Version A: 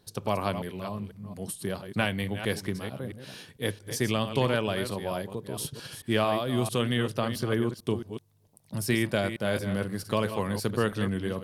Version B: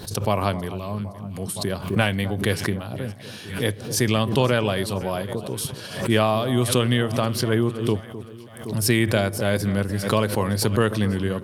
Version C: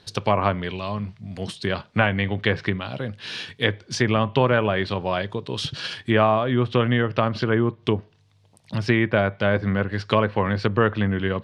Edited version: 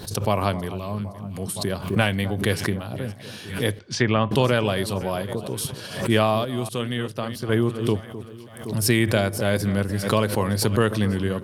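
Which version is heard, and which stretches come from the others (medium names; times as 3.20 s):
B
3.79–4.31 s: from C
6.45–7.49 s: from A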